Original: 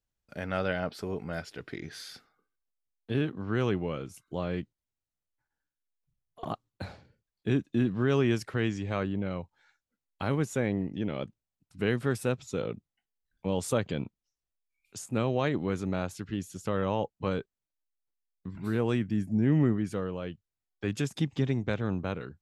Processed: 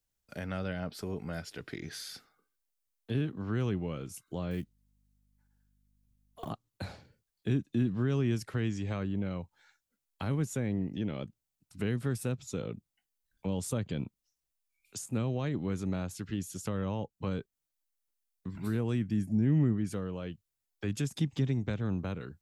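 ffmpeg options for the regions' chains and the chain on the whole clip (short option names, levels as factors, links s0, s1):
-filter_complex "[0:a]asettb=1/sr,asplit=3[s0][s1][s2];[s0]atrim=end=4.514[s3];[s1]atrim=start=4.51:end=6.49,asetpts=PTS-STARTPTS,afade=t=in:d=0.004:c=qsin,afade=t=out:st=1.976:d=0.004:c=qsin,acrusher=bits=8:mode=log:mix=0:aa=0.000001,aeval=exprs='val(0)+0.000316*(sin(2*PI*50*n/s)+sin(2*PI*2*50*n/s)/2+sin(2*PI*3*50*n/s)/3+sin(2*PI*4*50*n/s)/4+sin(2*PI*5*50*n/s)/5)':c=same[s4];[s2]atrim=start=6.486[s5];[s3][s4]acrossfade=d=0.004:c1=hsin:c2=qsin[s6];[s6][s5]acrossfade=d=0.004:c1=qsin:c2=hsin,highshelf=f=5100:g=9,acrossover=split=260[s7][s8];[s8]acompressor=threshold=0.00891:ratio=2.5[s9];[s7][s9]amix=inputs=2:normalize=0"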